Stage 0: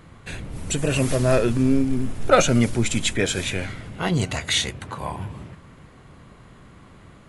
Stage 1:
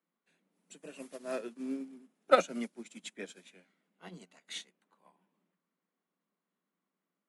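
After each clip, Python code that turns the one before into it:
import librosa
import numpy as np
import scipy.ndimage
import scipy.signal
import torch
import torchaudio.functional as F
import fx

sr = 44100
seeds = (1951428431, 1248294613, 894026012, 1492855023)

y = scipy.signal.sosfilt(scipy.signal.butter(16, 170.0, 'highpass', fs=sr, output='sos'), x)
y = fx.upward_expand(y, sr, threshold_db=-32.0, expansion=2.5)
y = y * 10.0 ** (-6.0 / 20.0)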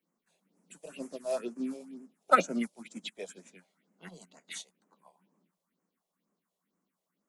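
y = fx.phaser_stages(x, sr, stages=4, low_hz=240.0, high_hz=3700.0, hz=2.1, feedback_pct=30)
y = y * 10.0 ** (5.5 / 20.0)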